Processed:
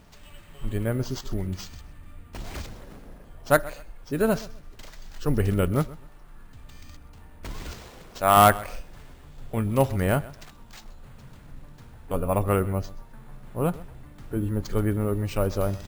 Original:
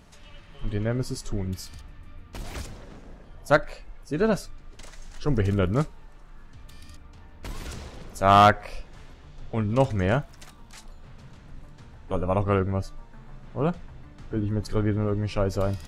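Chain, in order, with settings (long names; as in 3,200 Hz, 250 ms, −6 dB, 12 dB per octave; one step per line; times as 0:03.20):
0:07.73–0:08.37: low-shelf EQ 320 Hz −7.5 dB
decimation without filtering 4×
on a send: repeating echo 129 ms, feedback 25%, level −19.5 dB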